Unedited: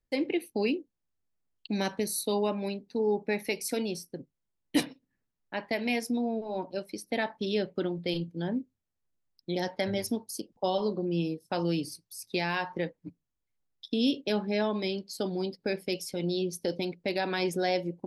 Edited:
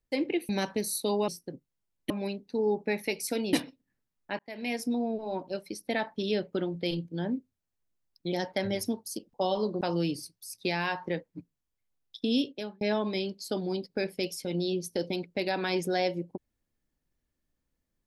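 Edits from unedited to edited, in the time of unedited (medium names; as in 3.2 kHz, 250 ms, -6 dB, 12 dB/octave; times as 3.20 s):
0.49–1.72 s: delete
3.94–4.76 s: move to 2.51 s
5.62–6.07 s: fade in
11.04–11.50 s: delete
14.03–14.50 s: fade out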